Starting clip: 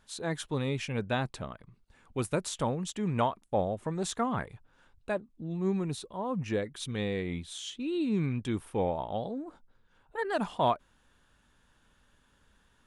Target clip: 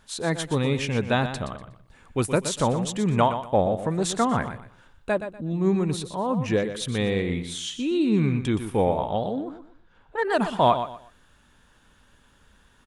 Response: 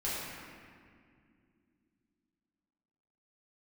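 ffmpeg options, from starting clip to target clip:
-filter_complex "[0:a]asettb=1/sr,asplit=3[link_01][link_02][link_03];[link_01]atrim=end=9.354[link_04];[link_02]atrim=start=9.35:end=10.23,asetpts=PTS-STARTPTS,afade=type=in:duration=0.004:curve=qsin,afade=type=out:start_time=0.876:duration=0.004:curve=qsin,adynamicsmooth=sensitivity=5.5:basefreq=5800[link_05];[link_03]atrim=start=10.226[link_06];[link_04][link_05]acrossfade=duration=0.004:curve1=hsin:curve2=qsin[link_07];[link_07][link_06]acrossfade=duration=0.004:curve1=qsin:curve2=hsin,aecho=1:1:121|242|363:0.316|0.0822|0.0214,volume=7.5dB"

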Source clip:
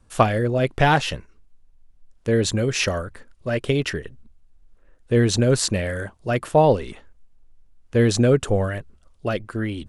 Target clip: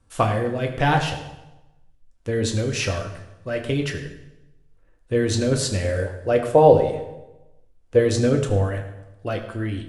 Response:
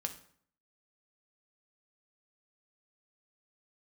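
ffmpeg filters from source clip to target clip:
-filter_complex "[0:a]asettb=1/sr,asplit=3[link_01][link_02][link_03];[link_01]atrim=end=5.844[link_04];[link_02]atrim=start=5.84:end=7.99,asetpts=PTS-STARTPTS,afade=type=in:duration=0.004:curve=qsin,afade=type=out:start_time=2.146:duration=0.004:curve=qsin,equalizer=frequency=490:width=1.5:gain=9.5[link_05];[link_03]atrim=start=7.986[link_06];[link_04][link_05]acrossfade=duration=0.004:curve1=hsin:curve2=qsin[link_07];[link_07][link_06]acrossfade=duration=0.004:curve1=qsin:curve2=hsin[link_08];[1:a]atrim=start_sample=2205,asetrate=24696,aresample=44100[link_09];[link_08][link_09]afir=irnorm=-1:irlink=0,volume=-6dB"

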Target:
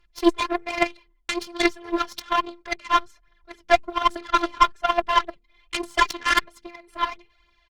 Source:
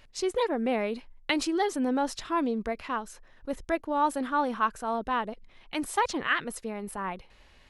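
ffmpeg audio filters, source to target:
ffmpeg -i in.wav -filter_complex "[0:a]bandreject=frequency=60:width_type=h:width=6,bandreject=frequency=120:width_type=h:width=6,bandreject=frequency=180:width_type=h:width=6,bandreject=frequency=240:width_type=h:width=6,bandreject=frequency=300:width_type=h:width=6,bandreject=frequency=360:width_type=h:width=6,afftfilt=real='hypot(re,im)*cos(PI*b)':imag='0':win_size=512:overlap=0.75,lowshelf=frequency=410:gain=-7.5,aecho=1:1:4.9:0.41,acrossover=split=300|410|1800[link_01][link_02][link_03][link_04];[link_01]acompressor=threshold=-57dB:ratio=8[link_05];[link_05][link_02][link_03][link_04]amix=inputs=4:normalize=0,alimiter=level_in=0.5dB:limit=-24dB:level=0:latency=1:release=179,volume=-0.5dB,lowpass=4600,aphaser=in_gain=1:out_gain=1:delay=4.3:decay=0.62:speed=1.2:type=triangular,aeval=exprs='0.112*(cos(1*acos(clip(val(0)/0.112,-1,1)))-cos(1*PI/2))+0.0316*(cos(2*acos(clip(val(0)/0.112,-1,1)))-cos(2*PI/2))+0.002*(cos(6*acos(clip(val(0)/0.112,-1,1)))-cos(6*PI/2))+0.0141*(cos(7*acos(clip(val(0)/0.112,-1,1)))-cos(7*PI/2))+0.001*(cos(8*acos(clip(val(0)/0.112,-1,1)))-cos(8*PI/2))':channel_layout=same,acontrast=90,volume=8dB" -ar 48000 -c:a libopus -b:a 32k out.opus

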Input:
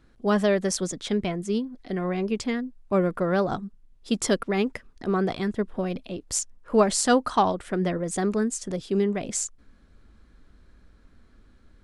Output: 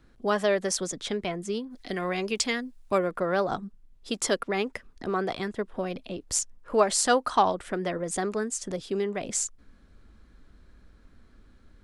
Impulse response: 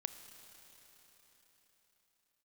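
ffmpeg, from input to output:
-filter_complex "[0:a]acrossover=split=380|2900[link_01][link_02][link_03];[link_01]acompressor=threshold=-35dB:ratio=6[link_04];[link_04][link_02][link_03]amix=inputs=3:normalize=0,asplit=3[link_05][link_06][link_07];[link_05]afade=type=out:start_time=1.7:duration=0.02[link_08];[link_06]highshelf=frequency=2200:gain=11.5,afade=type=in:start_time=1.7:duration=0.02,afade=type=out:start_time=2.97:duration=0.02[link_09];[link_07]afade=type=in:start_time=2.97:duration=0.02[link_10];[link_08][link_09][link_10]amix=inputs=3:normalize=0"

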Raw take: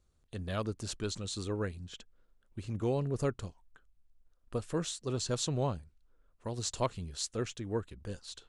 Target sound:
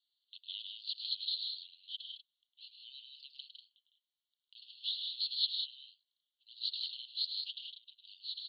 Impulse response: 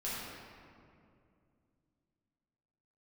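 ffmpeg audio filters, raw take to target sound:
-af "asuperpass=centerf=3600:order=12:qfactor=2.3,aecho=1:1:105|157.4|192.4:0.398|0.501|0.398,volume=7dB"

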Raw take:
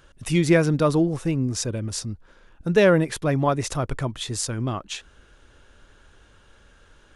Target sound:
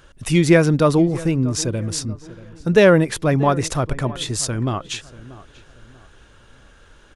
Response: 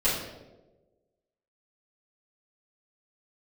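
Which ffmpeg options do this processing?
-filter_complex "[0:a]asplit=2[link_01][link_02];[link_02]adelay=636,lowpass=frequency=2200:poles=1,volume=-18dB,asplit=2[link_03][link_04];[link_04]adelay=636,lowpass=frequency=2200:poles=1,volume=0.37,asplit=2[link_05][link_06];[link_06]adelay=636,lowpass=frequency=2200:poles=1,volume=0.37[link_07];[link_01][link_03][link_05][link_07]amix=inputs=4:normalize=0,volume=4.5dB"

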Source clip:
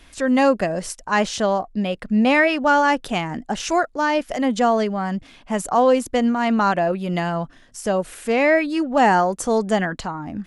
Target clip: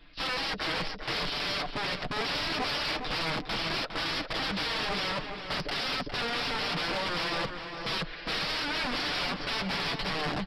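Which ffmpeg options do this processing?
ffmpeg -i in.wav -filter_complex "[0:a]agate=range=-8dB:threshold=-40dB:ratio=16:detection=peak,aecho=1:1:6.7:0.64,acompressor=threshold=-19dB:ratio=2.5,aresample=11025,aeval=exprs='(mod(20*val(0)+1,2)-1)/20':channel_layout=same,aresample=44100,flanger=delay=5.9:depth=1.3:regen=-37:speed=0.26:shape=triangular,asoftclip=type=tanh:threshold=-28dB,asplit=2[link_01][link_02];[link_02]adelay=408,lowpass=frequency=2500:poles=1,volume=-6dB,asplit=2[link_03][link_04];[link_04]adelay=408,lowpass=frequency=2500:poles=1,volume=0.32,asplit=2[link_05][link_06];[link_06]adelay=408,lowpass=frequency=2500:poles=1,volume=0.32,asplit=2[link_07][link_08];[link_08]adelay=408,lowpass=frequency=2500:poles=1,volume=0.32[link_09];[link_01][link_03][link_05][link_07][link_09]amix=inputs=5:normalize=0,volume=4dB" out.wav

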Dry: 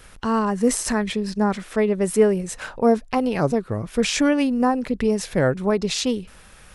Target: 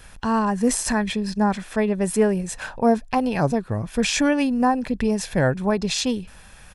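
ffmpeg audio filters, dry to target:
ffmpeg -i in.wav -af "aecho=1:1:1.2:0.34" out.wav

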